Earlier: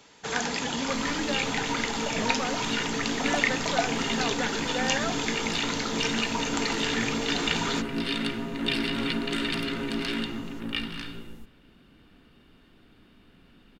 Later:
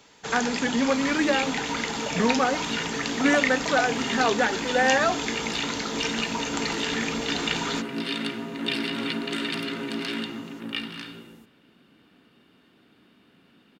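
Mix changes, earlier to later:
speech +9.5 dB; second sound: add high-pass 160 Hz 12 dB/octave

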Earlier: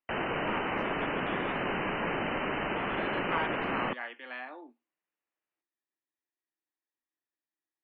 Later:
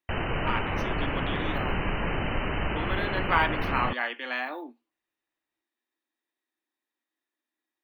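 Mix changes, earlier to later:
speech +9.0 dB; master: remove three-band isolator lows -20 dB, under 170 Hz, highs -22 dB, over 3.6 kHz

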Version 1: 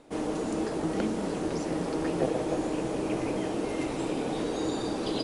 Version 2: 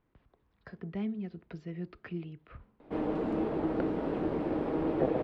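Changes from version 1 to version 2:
background: entry +2.80 s; master: add distance through air 440 m

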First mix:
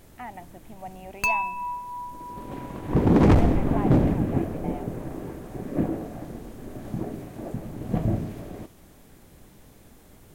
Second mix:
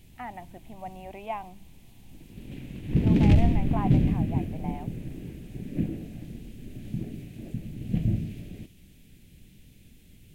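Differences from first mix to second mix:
first sound: muted; second sound: add FFT filter 190 Hz 0 dB, 1.1 kHz -24 dB, 2.6 kHz +3 dB, 5.5 kHz -5 dB

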